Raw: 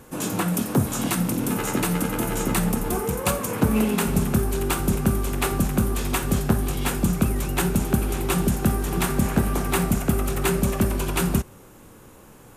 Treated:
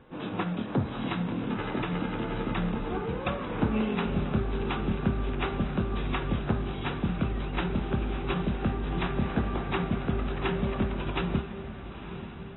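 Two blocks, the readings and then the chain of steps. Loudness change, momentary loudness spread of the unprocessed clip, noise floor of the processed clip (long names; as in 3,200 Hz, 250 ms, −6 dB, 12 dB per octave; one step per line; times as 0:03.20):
−7.0 dB, 3 LU, −40 dBFS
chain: feedback delay with all-pass diffusion 948 ms, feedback 54%, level −11 dB
level −7 dB
AAC 16 kbit/s 22,050 Hz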